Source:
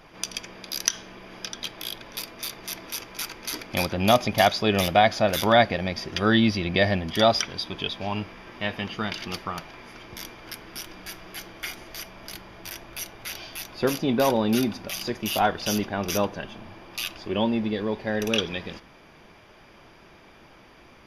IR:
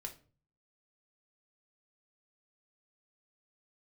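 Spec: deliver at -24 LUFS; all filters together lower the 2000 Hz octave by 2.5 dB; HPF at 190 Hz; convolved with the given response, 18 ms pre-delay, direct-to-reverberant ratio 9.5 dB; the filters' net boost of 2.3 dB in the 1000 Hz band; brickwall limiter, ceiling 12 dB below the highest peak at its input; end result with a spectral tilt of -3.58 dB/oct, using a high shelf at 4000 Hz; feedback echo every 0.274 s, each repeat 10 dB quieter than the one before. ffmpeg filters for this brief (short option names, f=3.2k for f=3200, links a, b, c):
-filter_complex "[0:a]highpass=190,equalizer=f=1k:t=o:g=4.5,equalizer=f=2k:t=o:g=-5.5,highshelf=f=4k:g=3.5,alimiter=limit=-13.5dB:level=0:latency=1,aecho=1:1:274|548|822|1096:0.316|0.101|0.0324|0.0104,asplit=2[a][b];[1:a]atrim=start_sample=2205,adelay=18[c];[b][c]afir=irnorm=-1:irlink=0,volume=-6.5dB[d];[a][d]amix=inputs=2:normalize=0,volume=3.5dB"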